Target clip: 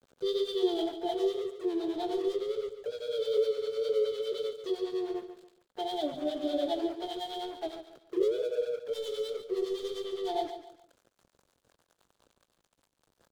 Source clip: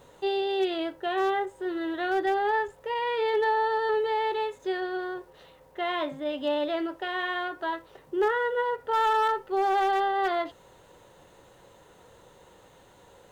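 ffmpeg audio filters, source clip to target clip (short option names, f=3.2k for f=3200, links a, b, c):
-filter_complex "[0:a]aemphasis=mode=reproduction:type=50kf,flanger=delay=16:depth=7.6:speed=2,highshelf=f=5.2k:g=11.5,bandreject=f=50:t=h:w=6,bandreject=f=100:t=h:w=6,bandreject=f=150:t=h:w=6,bandreject=f=200:t=h:w=6,asplit=2[a][b];[b]acompressor=threshold=-41dB:ratio=6,volume=1.5dB[c];[a][c]amix=inputs=2:normalize=0,afftfilt=real='re*(1-between(b*sr/4096,730,3000))':imag='im*(1-between(b*sr/4096,730,3000))':win_size=4096:overlap=0.75,asplit=2[d][e];[e]asetrate=55563,aresample=44100,atempo=0.793701,volume=-13dB[f];[d][f]amix=inputs=2:normalize=0,aeval=exprs='sgn(val(0))*max(abs(val(0))-0.00473,0)':c=same,acrossover=split=540[g][h];[g]aeval=exprs='val(0)*(1-0.7/2+0.7/2*cos(2*PI*9.8*n/s))':c=same[i];[h]aeval=exprs='val(0)*(1-0.7/2-0.7/2*cos(2*PI*9.8*n/s))':c=same[j];[i][j]amix=inputs=2:normalize=0,aecho=1:1:142|284|426:0.299|0.0955|0.0306,volume=2.5dB"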